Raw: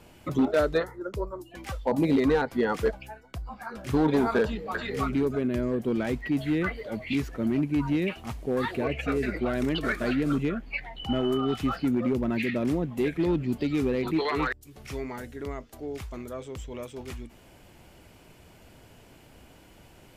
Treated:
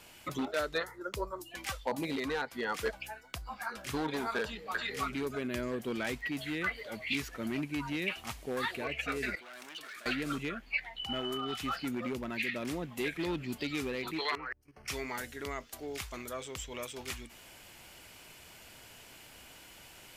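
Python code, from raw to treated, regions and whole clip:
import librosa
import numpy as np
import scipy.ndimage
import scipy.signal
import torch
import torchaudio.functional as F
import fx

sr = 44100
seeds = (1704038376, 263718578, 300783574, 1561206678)

y = fx.chain(x, sr, fx.overload_stage(gain_db=26.0),
    fx.highpass(hz=830.0, slope=6),
    fx.level_steps(step_db=24), at=(9.35, 10.06))
y = fx.chain(y, sr, fx.level_steps(step_db=12),
    fx.moving_average(points=12), at=(14.35, 14.88))
y = fx.tilt_shelf(y, sr, db=-8.0, hz=900.0)
y = fx.rider(y, sr, range_db=4, speed_s=0.5)
y = y * librosa.db_to_amplitude(-4.5)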